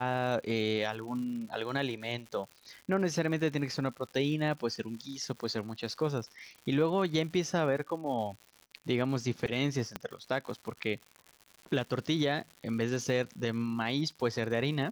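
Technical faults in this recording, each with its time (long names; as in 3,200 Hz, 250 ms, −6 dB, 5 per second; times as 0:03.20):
surface crackle 170 per second −41 dBFS
0:09.96: click −18 dBFS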